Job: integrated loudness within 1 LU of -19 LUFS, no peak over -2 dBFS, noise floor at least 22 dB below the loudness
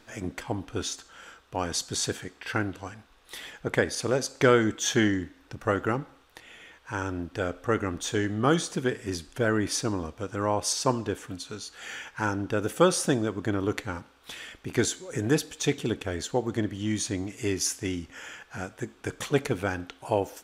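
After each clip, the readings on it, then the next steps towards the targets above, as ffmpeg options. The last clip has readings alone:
loudness -29.0 LUFS; peak level -7.0 dBFS; loudness target -19.0 LUFS
-> -af "volume=3.16,alimiter=limit=0.794:level=0:latency=1"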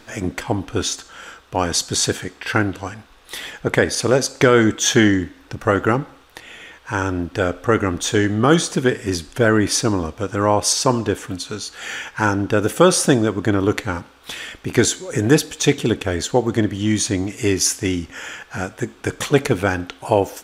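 loudness -19.5 LUFS; peak level -2.0 dBFS; noise floor -48 dBFS

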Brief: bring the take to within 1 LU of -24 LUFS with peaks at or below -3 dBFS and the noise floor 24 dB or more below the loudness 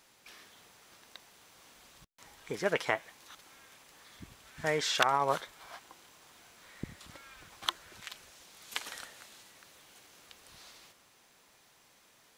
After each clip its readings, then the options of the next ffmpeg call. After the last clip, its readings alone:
loudness -34.0 LUFS; peak level -11.0 dBFS; loudness target -24.0 LUFS
-> -af "volume=3.16,alimiter=limit=0.708:level=0:latency=1"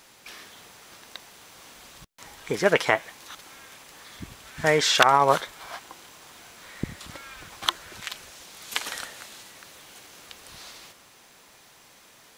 loudness -24.0 LUFS; peak level -3.0 dBFS; noise floor -54 dBFS

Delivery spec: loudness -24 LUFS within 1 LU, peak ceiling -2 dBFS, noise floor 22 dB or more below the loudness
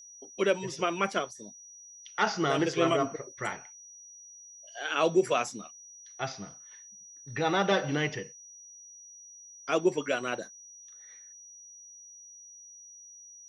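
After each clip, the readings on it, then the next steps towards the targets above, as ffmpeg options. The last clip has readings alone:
steady tone 5.8 kHz; tone level -48 dBFS; loudness -29.5 LUFS; peak level -11.5 dBFS; loudness target -24.0 LUFS
-> -af "bandreject=f=5800:w=30"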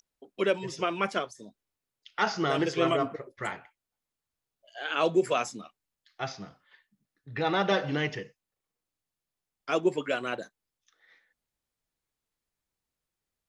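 steady tone not found; loudness -29.5 LUFS; peak level -11.5 dBFS; loudness target -24.0 LUFS
-> -af "volume=1.88"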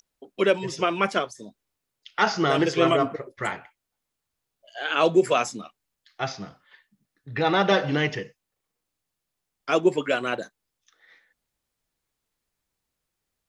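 loudness -24.0 LUFS; peak level -6.0 dBFS; noise floor -83 dBFS

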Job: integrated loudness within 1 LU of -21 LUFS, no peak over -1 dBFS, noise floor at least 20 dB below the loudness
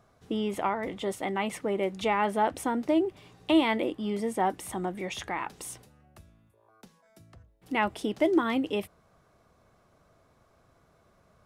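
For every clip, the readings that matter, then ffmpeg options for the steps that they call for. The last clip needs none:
loudness -29.0 LUFS; peak level -12.5 dBFS; loudness target -21.0 LUFS
-> -af "volume=2.51"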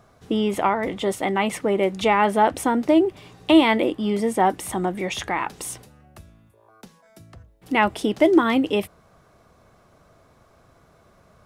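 loudness -21.0 LUFS; peak level -4.5 dBFS; noise floor -57 dBFS

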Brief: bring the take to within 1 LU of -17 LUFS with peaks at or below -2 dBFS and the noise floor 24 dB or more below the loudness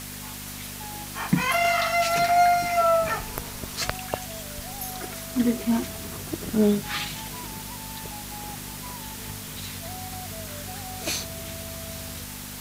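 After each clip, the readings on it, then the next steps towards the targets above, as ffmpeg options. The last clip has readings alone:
hum 50 Hz; highest harmonic 250 Hz; hum level -40 dBFS; noise floor -37 dBFS; noise floor target -51 dBFS; loudness -27.0 LUFS; peak level -4.5 dBFS; loudness target -17.0 LUFS
-> -af "bandreject=f=50:t=h:w=4,bandreject=f=100:t=h:w=4,bandreject=f=150:t=h:w=4,bandreject=f=200:t=h:w=4,bandreject=f=250:t=h:w=4"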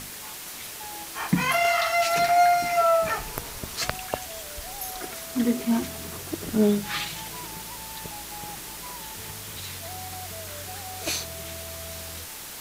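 hum not found; noise floor -39 dBFS; noise floor target -52 dBFS
-> -af "afftdn=nr=13:nf=-39"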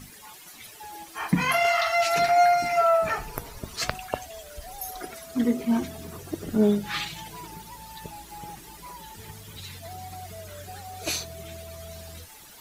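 noise floor -47 dBFS; noise floor target -49 dBFS
-> -af "afftdn=nr=6:nf=-47"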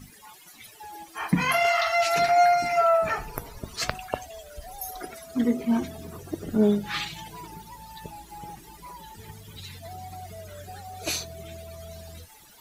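noise floor -51 dBFS; loudness -25.0 LUFS; peak level -5.0 dBFS; loudness target -17.0 LUFS
-> -af "volume=2.51,alimiter=limit=0.794:level=0:latency=1"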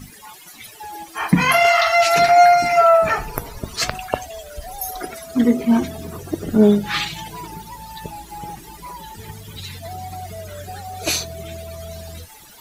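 loudness -17.0 LUFS; peak level -2.0 dBFS; noise floor -43 dBFS

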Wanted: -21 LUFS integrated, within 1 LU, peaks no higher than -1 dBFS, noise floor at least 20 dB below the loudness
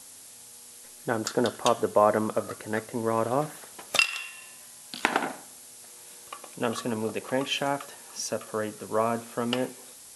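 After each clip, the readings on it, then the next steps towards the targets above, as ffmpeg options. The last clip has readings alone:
noise floor -48 dBFS; noise floor target -49 dBFS; loudness -28.5 LUFS; peak level -4.5 dBFS; loudness target -21.0 LUFS
-> -af "afftdn=nr=6:nf=-48"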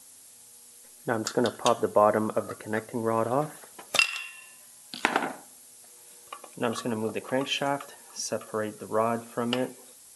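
noise floor -52 dBFS; loudness -28.5 LUFS; peak level -4.5 dBFS; loudness target -21.0 LUFS
-> -af "volume=2.37,alimiter=limit=0.891:level=0:latency=1"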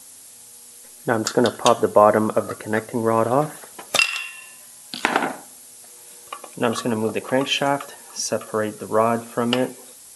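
loudness -21.5 LUFS; peak level -1.0 dBFS; noise floor -45 dBFS

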